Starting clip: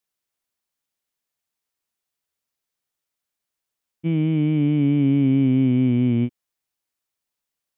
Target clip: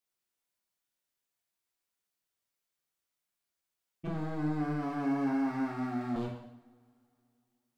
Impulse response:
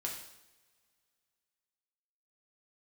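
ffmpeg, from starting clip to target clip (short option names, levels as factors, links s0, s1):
-filter_complex "[0:a]asettb=1/sr,asplit=3[s0][s1][s2];[s0]atrim=end=4.074[s3];[s1]atrim=start=4.07:end=6.16,asetpts=PTS-STARTPTS,afade=t=in:d=0.004:c=qsin,afade=t=out:st=2.086:d=0.004:c=qsin,asuperpass=centerf=240:order=12:qfactor=0.89[s4];[s2]atrim=start=6.156[s5];[s3][s4]acrossfade=d=0.004:c1=hsin:c2=qsin[s6];[s6][s5]acrossfade=d=0.004:c1=qsin:c2=hsin,asoftclip=type=hard:threshold=0.0422[s7];[1:a]atrim=start_sample=2205[s8];[s7][s8]afir=irnorm=-1:irlink=0,volume=0.631"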